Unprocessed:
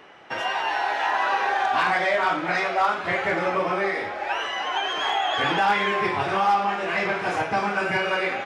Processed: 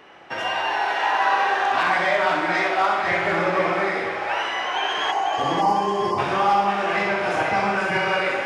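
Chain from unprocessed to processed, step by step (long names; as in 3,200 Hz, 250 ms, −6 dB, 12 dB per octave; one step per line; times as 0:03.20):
flutter between parallel walls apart 11.1 metres, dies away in 0.65 s
time-frequency box erased 0:05.12–0:06.18, 1,200–4,300 Hz
echo with a time of its own for lows and highs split 1,200 Hz, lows 111 ms, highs 497 ms, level −6 dB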